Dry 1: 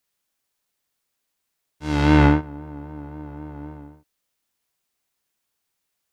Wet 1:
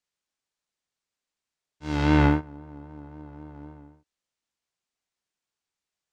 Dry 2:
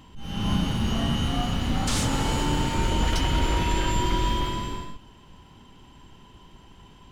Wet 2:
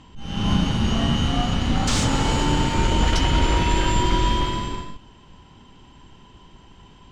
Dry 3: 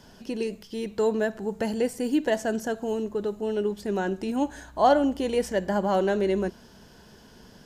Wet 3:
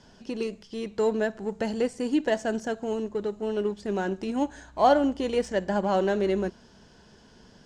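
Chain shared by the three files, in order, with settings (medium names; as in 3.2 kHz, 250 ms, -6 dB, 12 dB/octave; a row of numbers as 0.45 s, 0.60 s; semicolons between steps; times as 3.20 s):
low-pass 8.2 kHz 24 dB/octave; in parallel at -7.5 dB: crossover distortion -32.5 dBFS; on the sum: peak normalisation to -9 dBFS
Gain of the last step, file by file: -7.5 dB, +2.0 dB, -3.0 dB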